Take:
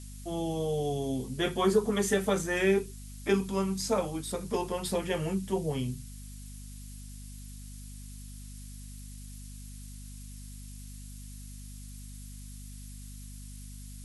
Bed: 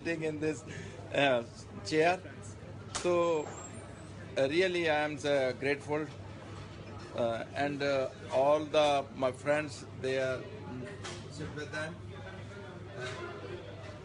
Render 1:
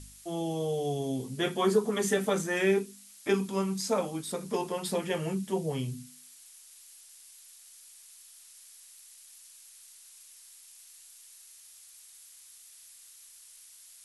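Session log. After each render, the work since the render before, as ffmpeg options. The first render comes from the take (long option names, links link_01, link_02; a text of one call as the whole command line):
ffmpeg -i in.wav -af "bandreject=frequency=50:width_type=h:width=4,bandreject=frequency=100:width_type=h:width=4,bandreject=frequency=150:width_type=h:width=4,bandreject=frequency=200:width_type=h:width=4,bandreject=frequency=250:width_type=h:width=4" out.wav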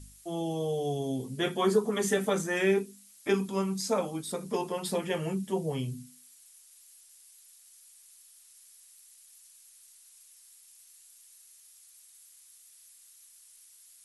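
ffmpeg -i in.wav -af "afftdn=noise_reduction=6:noise_floor=-54" out.wav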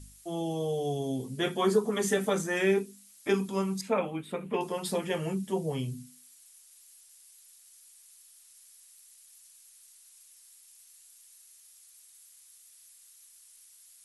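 ffmpeg -i in.wav -filter_complex "[0:a]asettb=1/sr,asplit=3[link_01][link_02][link_03];[link_01]atrim=end=3.814[link_04];[link_02]atrim=start=3.81:end=4.61,asetpts=PTS-STARTPTS,afade=type=in:duration=0.004:curve=qsin,afade=type=out:start_time=0.796:duration=0.004:curve=qsin,highshelf=frequency=3700:width_type=q:width=3:gain=-12.5[link_05];[link_03]atrim=start=4.606[link_06];[link_04][link_05]acrossfade=duration=0.004:curve1=hsin:curve2=qsin[link_07];[link_07][link_06]acrossfade=duration=0.004:curve1=qsin:curve2=hsin" out.wav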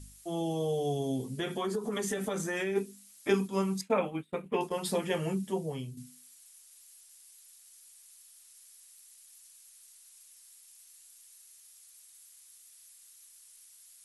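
ffmpeg -i in.wav -filter_complex "[0:a]asplit=3[link_01][link_02][link_03];[link_01]afade=type=out:start_time=1.32:duration=0.02[link_04];[link_02]acompressor=threshold=-29dB:ratio=6:attack=3.2:release=140:knee=1:detection=peak,afade=type=in:start_time=1.32:duration=0.02,afade=type=out:start_time=2.75:duration=0.02[link_05];[link_03]afade=type=in:start_time=2.75:duration=0.02[link_06];[link_04][link_05][link_06]amix=inputs=3:normalize=0,asettb=1/sr,asplit=3[link_07][link_08][link_09];[link_07]atrim=end=3.304[link_10];[link_08]atrim=start=3.3:end=4.78,asetpts=PTS-STARTPTS,afade=type=in:duration=0.004:curve=qsin,afade=type=out:start_time=1.476:duration=0.004:curve=qsin,agate=range=-33dB:threshold=-35dB:ratio=3:release=100:detection=peak[link_11];[link_09]atrim=start=4.776[link_12];[link_10][link_11]acrossfade=duration=0.004:curve1=hsin:curve2=qsin[link_13];[link_13][link_12]acrossfade=duration=0.004:curve1=qsin:curve2=hsin,asplit=2[link_14][link_15];[link_14]atrim=end=5.97,asetpts=PTS-STARTPTS,afade=type=out:start_time=5.34:duration=0.63:silence=0.354813[link_16];[link_15]atrim=start=5.97,asetpts=PTS-STARTPTS,afade=type=in:duration=0.004:curve=hsin:silence=0.354813[link_17];[link_16][link_17]concat=n=2:v=0:a=1" out.wav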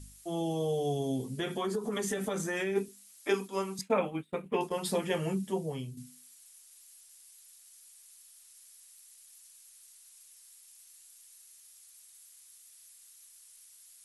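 ffmpeg -i in.wav -filter_complex "[0:a]asettb=1/sr,asplit=3[link_01][link_02][link_03];[link_01]atrim=end=2.884[link_04];[link_02]atrim=start=2.88:end=3.79,asetpts=PTS-STARTPTS,afade=type=in:duration=0.004:curve=qsin,afade=type=out:start_time=0.906:duration=0.004:curve=qsin,highpass=330[link_05];[link_03]atrim=start=3.786[link_06];[link_04][link_05]acrossfade=duration=0.004:curve1=hsin:curve2=qsin[link_07];[link_07][link_06]acrossfade=duration=0.004:curve1=qsin:curve2=hsin" out.wav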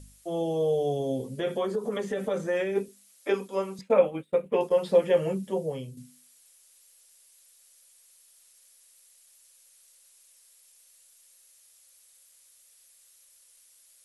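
ffmpeg -i in.wav -filter_complex "[0:a]equalizer=frequency=530:width_type=o:width=0.39:gain=13.5,acrossover=split=4000[link_01][link_02];[link_02]acompressor=threshold=-54dB:ratio=4:attack=1:release=60[link_03];[link_01][link_03]amix=inputs=2:normalize=0" out.wav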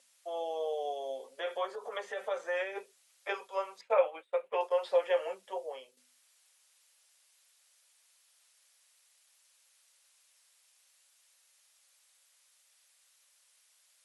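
ffmpeg -i in.wav -af "highpass=frequency=630:width=0.5412,highpass=frequency=630:width=1.3066,aemphasis=mode=reproduction:type=50fm" out.wav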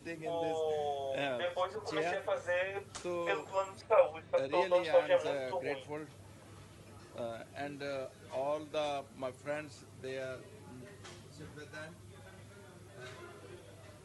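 ffmpeg -i in.wav -i bed.wav -filter_complex "[1:a]volume=-9dB[link_01];[0:a][link_01]amix=inputs=2:normalize=0" out.wav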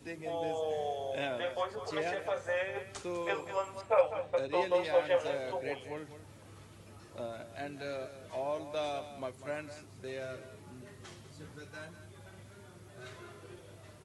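ffmpeg -i in.wav -af "aecho=1:1:199:0.251" out.wav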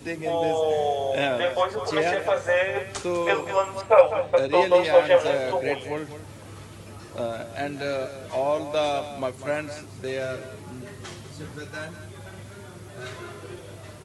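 ffmpeg -i in.wav -af "volume=11.5dB" out.wav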